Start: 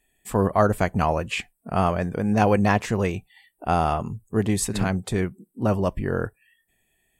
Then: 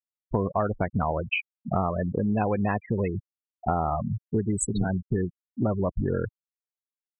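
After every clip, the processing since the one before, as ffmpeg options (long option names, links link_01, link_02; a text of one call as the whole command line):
ffmpeg -i in.wav -af "afftfilt=real='re*gte(hypot(re,im),0.112)':imag='im*gte(hypot(re,im),0.112)':win_size=1024:overlap=0.75,equalizer=frequency=6600:width=3.2:gain=10.5,acompressor=threshold=-28dB:ratio=6,volume=5.5dB" out.wav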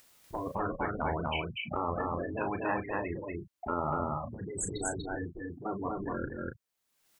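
ffmpeg -i in.wav -af "acompressor=mode=upward:threshold=-32dB:ratio=2.5,afftfilt=real='re*lt(hypot(re,im),0.224)':imag='im*lt(hypot(re,im),0.224)':win_size=1024:overlap=0.75,aecho=1:1:34.99|242|277:0.355|0.794|0.282,volume=-2.5dB" out.wav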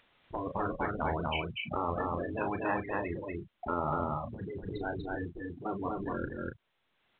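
ffmpeg -i in.wav -ar 8000 -c:a pcm_mulaw out.wav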